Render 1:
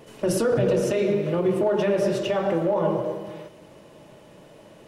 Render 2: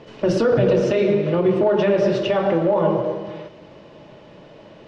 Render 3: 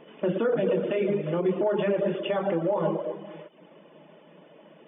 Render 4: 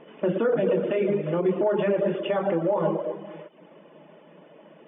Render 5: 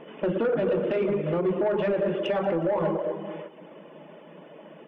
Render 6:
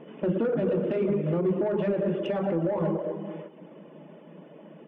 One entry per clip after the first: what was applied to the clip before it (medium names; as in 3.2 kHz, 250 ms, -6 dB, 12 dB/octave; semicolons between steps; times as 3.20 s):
low-pass 5.1 kHz 24 dB/octave; trim +4.5 dB
reverb removal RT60 0.51 s; FFT band-pass 150–3600 Hz; trim -6.5 dB
tone controls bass -1 dB, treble -12 dB; trim +2 dB
in parallel at +0.5 dB: compression, threshold -30 dBFS, peak gain reduction 11 dB; on the sum: saturation -15.5 dBFS, distortion -18 dB; feedback delay 183 ms, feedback 51%, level -18.5 dB; trim -2.5 dB
peaking EQ 180 Hz +9.5 dB 2.6 oct; trim -6.5 dB